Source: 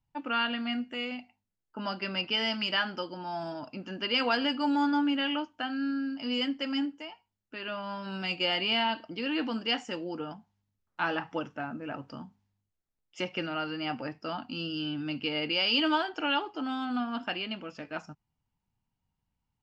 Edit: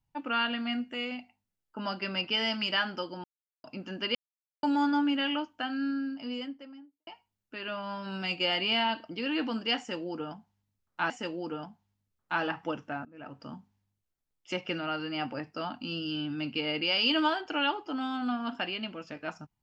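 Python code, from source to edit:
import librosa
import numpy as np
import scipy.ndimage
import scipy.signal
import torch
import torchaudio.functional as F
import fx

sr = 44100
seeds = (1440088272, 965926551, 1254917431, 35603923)

y = fx.studio_fade_out(x, sr, start_s=5.79, length_s=1.28)
y = fx.edit(y, sr, fx.silence(start_s=3.24, length_s=0.4),
    fx.silence(start_s=4.15, length_s=0.48),
    fx.repeat(start_s=9.78, length_s=1.32, count=2),
    fx.fade_in_from(start_s=11.73, length_s=0.48, floor_db=-22.0), tone=tone)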